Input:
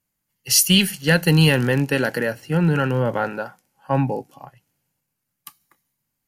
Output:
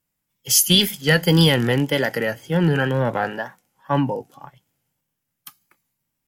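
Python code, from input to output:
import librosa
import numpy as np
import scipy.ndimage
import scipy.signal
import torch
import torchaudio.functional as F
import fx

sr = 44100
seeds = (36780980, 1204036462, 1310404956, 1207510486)

y = fx.formant_shift(x, sr, semitones=2)
y = fx.wow_flutter(y, sr, seeds[0], rate_hz=2.1, depth_cents=71.0)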